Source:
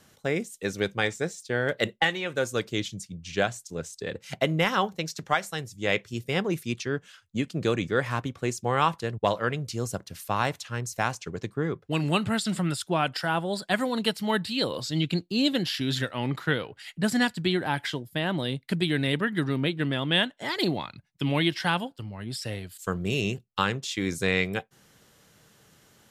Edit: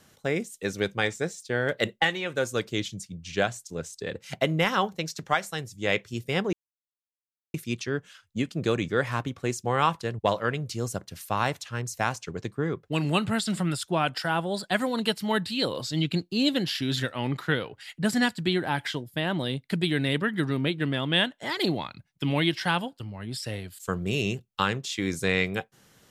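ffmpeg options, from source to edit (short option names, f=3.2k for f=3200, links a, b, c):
-filter_complex "[0:a]asplit=2[a][b];[a]atrim=end=6.53,asetpts=PTS-STARTPTS,afade=t=out:st=6.526:d=0.004:c=hsin,apad=pad_dur=1.01[c];[b]atrim=start=6.53,asetpts=PTS-STARTPTS,afade=t=in:d=0.004:c=hsin[d];[c][d]concat=n=2:v=0:a=1"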